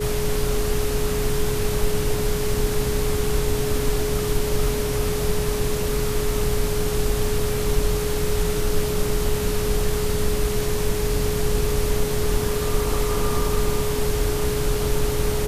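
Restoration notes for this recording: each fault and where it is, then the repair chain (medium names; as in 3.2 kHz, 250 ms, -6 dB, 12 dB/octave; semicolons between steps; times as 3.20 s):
whine 420 Hz -25 dBFS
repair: band-stop 420 Hz, Q 30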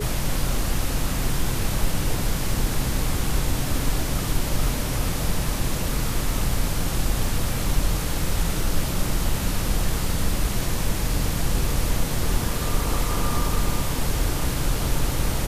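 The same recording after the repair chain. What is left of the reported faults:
nothing left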